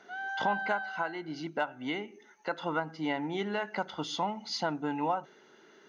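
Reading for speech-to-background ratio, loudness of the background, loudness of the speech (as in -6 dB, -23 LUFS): 2.0 dB, -36.5 LUFS, -34.5 LUFS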